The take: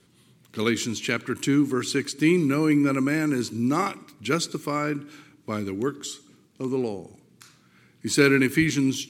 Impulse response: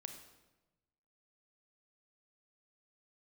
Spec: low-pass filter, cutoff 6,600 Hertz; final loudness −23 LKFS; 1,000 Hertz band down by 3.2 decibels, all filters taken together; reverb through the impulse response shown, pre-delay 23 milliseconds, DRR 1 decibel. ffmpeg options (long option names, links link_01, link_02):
-filter_complex "[0:a]lowpass=6600,equalizer=frequency=1000:width_type=o:gain=-4.5,asplit=2[link_01][link_02];[1:a]atrim=start_sample=2205,adelay=23[link_03];[link_02][link_03]afir=irnorm=-1:irlink=0,volume=3dB[link_04];[link_01][link_04]amix=inputs=2:normalize=0,volume=-0.5dB"